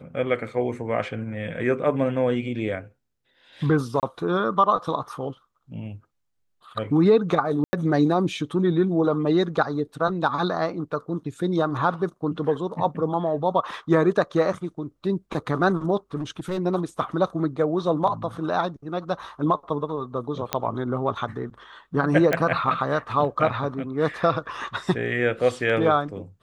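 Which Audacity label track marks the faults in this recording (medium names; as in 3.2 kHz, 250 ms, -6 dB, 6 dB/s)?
4.000000	4.030000	dropout 28 ms
7.640000	7.730000	dropout 90 ms
16.150000	16.590000	clipped -24 dBFS
20.530000	20.530000	pop -7 dBFS
22.330000	22.330000	pop -9 dBFS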